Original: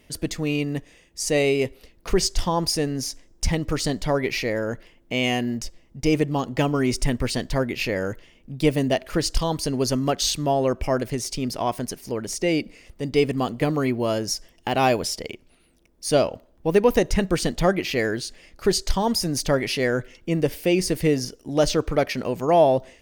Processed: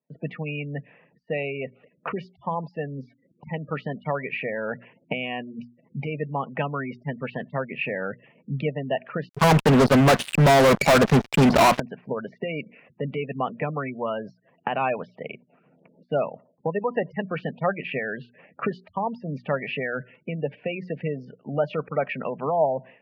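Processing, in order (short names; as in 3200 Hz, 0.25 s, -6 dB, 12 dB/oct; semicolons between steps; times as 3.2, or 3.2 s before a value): recorder AGC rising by 22 dB/s; spectral gate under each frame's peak -25 dB strong; gate with hold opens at -44 dBFS; Chebyshev band-pass 140–2600 Hz, order 4; notch 2100 Hz, Q 9.4; low-pass opened by the level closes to 1000 Hz, open at -15.5 dBFS; notches 60/120/180/240 Hz; harmonic-percussive split harmonic -5 dB; bell 330 Hz -14.5 dB 0.58 oct; 9.29–11.8 fuzz box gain 39 dB, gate -45 dBFS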